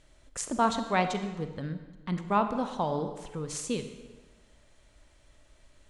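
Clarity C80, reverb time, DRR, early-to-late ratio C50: 10.5 dB, 1.3 s, 8.0 dB, 9.0 dB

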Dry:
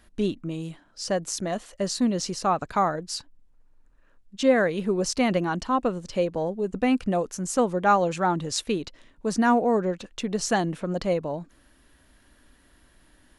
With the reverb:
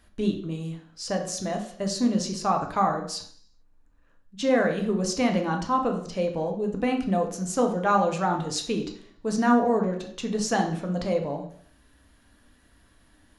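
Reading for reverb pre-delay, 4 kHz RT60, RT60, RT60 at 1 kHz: 3 ms, 0.65 s, 0.60 s, 0.55 s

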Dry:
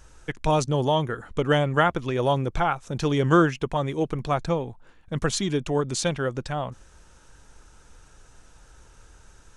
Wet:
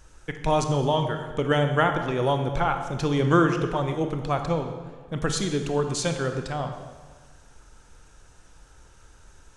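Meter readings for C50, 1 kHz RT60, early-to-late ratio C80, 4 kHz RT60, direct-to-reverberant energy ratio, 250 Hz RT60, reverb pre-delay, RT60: 7.5 dB, 1.6 s, 8.5 dB, 1.2 s, 6.0 dB, 1.6 s, 24 ms, 1.6 s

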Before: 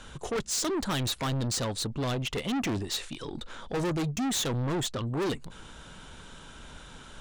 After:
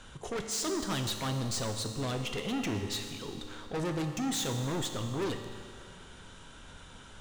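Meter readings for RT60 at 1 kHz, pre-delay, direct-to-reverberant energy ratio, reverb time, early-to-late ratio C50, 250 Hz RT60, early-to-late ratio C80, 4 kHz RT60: 2.2 s, 4 ms, 4.0 dB, 2.2 s, 6.0 dB, 2.2 s, 7.0 dB, 2.1 s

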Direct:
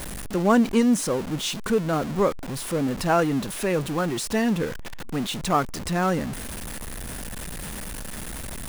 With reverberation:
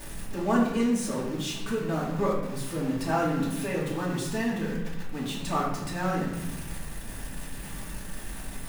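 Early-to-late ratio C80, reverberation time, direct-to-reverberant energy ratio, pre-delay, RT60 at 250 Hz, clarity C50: 5.5 dB, 0.95 s, −6.5 dB, 3 ms, 1.6 s, 3.0 dB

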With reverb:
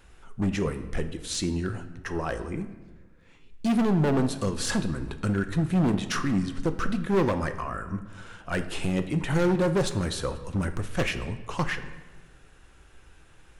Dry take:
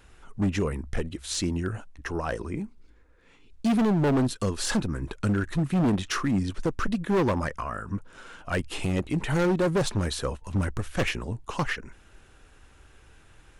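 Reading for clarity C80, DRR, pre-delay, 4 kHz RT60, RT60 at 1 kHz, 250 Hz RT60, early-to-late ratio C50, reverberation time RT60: 13.5 dB, 8.0 dB, 5 ms, 0.90 s, 1.1 s, 1.5 s, 11.5 dB, 1.2 s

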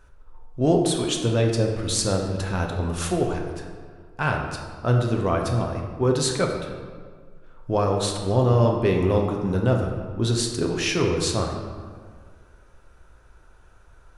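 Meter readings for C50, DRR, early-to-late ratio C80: 4.0 dB, 1.0 dB, 5.5 dB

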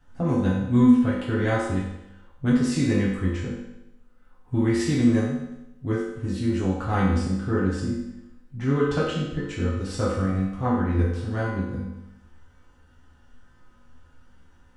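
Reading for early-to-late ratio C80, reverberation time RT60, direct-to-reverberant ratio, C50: 4.0 dB, 0.90 s, −9.0 dB, 1.0 dB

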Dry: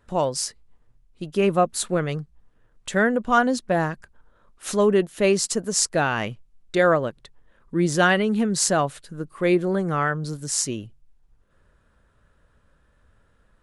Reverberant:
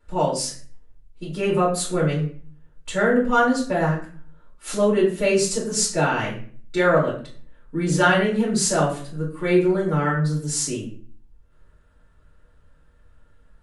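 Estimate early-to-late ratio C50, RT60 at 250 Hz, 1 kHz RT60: 7.0 dB, 0.60 s, 0.40 s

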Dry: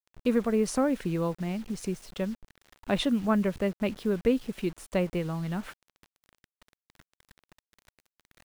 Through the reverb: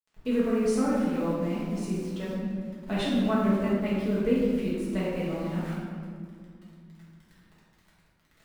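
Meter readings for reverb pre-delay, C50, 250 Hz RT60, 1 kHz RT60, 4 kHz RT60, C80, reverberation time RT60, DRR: 4 ms, −2.0 dB, 3.3 s, 2.0 s, 1.1 s, 0.5 dB, 2.2 s, −9.0 dB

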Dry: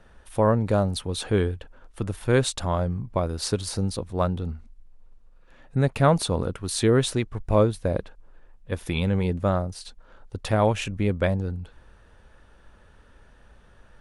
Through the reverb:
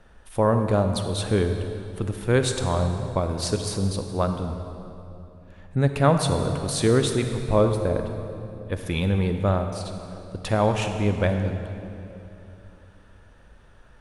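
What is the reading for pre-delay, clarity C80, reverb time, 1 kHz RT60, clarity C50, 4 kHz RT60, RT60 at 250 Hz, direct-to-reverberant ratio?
35 ms, 7.0 dB, 2.9 s, 2.7 s, 6.5 dB, 2.1 s, 3.4 s, 6.0 dB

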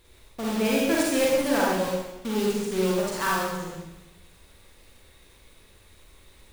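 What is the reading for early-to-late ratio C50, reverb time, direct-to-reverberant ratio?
−2.5 dB, 1.0 s, −5.0 dB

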